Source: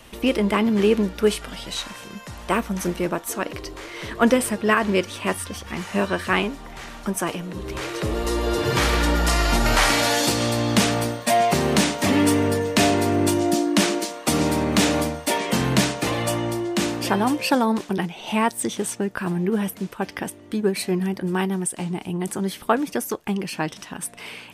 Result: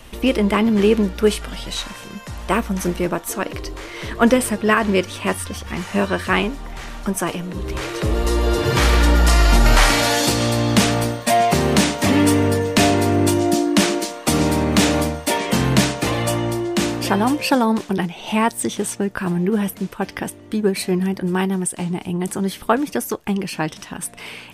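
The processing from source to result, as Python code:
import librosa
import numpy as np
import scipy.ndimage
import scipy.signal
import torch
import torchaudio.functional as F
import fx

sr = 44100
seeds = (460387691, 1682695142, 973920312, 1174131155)

y = fx.low_shelf(x, sr, hz=73.0, db=9.5)
y = y * 10.0 ** (2.5 / 20.0)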